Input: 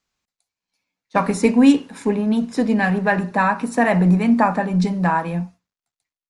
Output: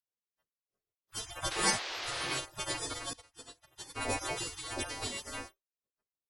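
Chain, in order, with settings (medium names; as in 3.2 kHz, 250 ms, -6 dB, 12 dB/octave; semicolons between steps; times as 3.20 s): partials quantised in pitch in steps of 2 st; spectral gate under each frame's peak -30 dB weak; 1.50–2.38 s: band noise 350–4900 Hz -45 dBFS; 3.13–4.12 s: upward expansion 2.5:1, over -49 dBFS; trim +5.5 dB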